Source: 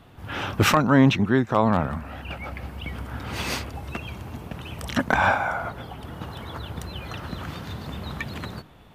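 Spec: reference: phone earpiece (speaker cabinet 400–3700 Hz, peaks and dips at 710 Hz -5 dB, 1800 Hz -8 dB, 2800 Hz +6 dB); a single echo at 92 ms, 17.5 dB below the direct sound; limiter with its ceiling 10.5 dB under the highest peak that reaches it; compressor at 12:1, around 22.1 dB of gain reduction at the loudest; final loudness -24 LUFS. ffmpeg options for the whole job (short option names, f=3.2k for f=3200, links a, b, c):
-af "acompressor=threshold=-35dB:ratio=12,alimiter=level_in=7.5dB:limit=-24dB:level=0:latency=1,volume=-7.5dB,highpass=400,equalizer=f=710:t=q:w=4:g=-5,equalizer=f=1.8k:t=q:w=4:g=-8,equalizer=f=2.8k:t=q:w=4:g=6,lowpass=f=3.7k:w=0.5412,lowpass=f=3.7k:w=1.3066,aecho=1:1:92:0.133,volume=21.5dB"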